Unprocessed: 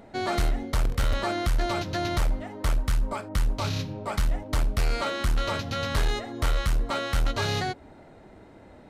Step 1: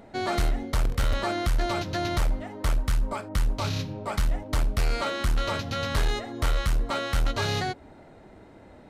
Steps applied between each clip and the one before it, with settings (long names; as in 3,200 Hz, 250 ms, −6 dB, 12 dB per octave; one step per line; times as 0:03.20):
no processing that can be heard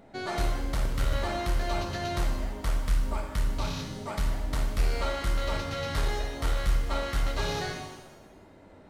reverb with rising layers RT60 1.1 s, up +7 semitones, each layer −8 dB, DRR 2.5 dB
level −5.5 dB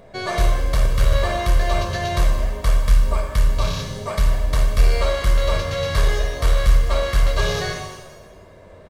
comb filter 1.8 ms, depth 66%
level +7 dB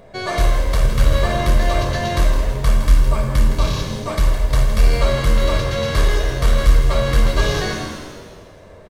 echo with shifted repeats 163 ms, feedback 55%, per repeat −86 Hz, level −10 dB
level +1.5 dB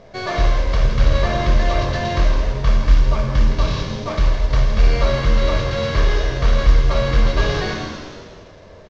variable-slope delta modulation 32 kbit/s